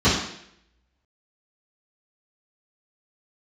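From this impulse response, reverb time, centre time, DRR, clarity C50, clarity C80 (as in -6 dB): 0.70 s, 49 ms, -13.0 dB, 2.5 dB, 6.5 dB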